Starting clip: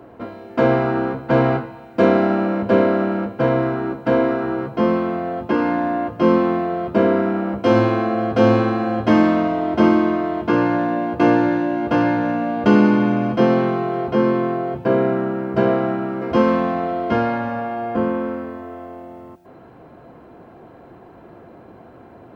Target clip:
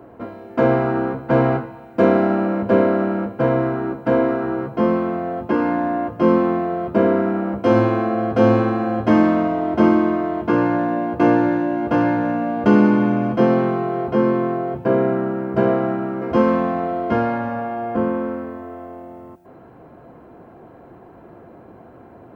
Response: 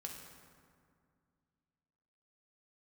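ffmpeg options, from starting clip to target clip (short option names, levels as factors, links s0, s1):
-af "equalizer=f=4000:w=0.82:g=-6.5"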